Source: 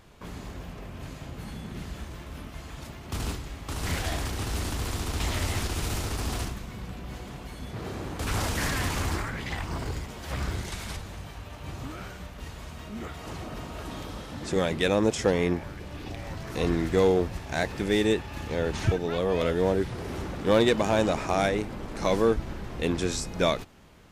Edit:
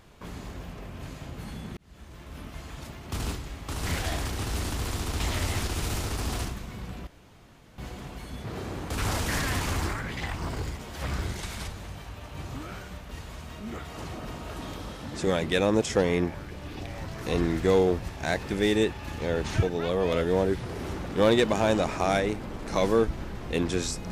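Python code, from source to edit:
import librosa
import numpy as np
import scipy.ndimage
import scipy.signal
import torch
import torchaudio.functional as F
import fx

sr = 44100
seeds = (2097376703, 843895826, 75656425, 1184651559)

y = fx.edit(x, sr, fx.fade_in_span(start_s=1.77, length_s=0.71),
    fx.insert_room_tone(at_s=7.07, length_s=0.71), tone=tone)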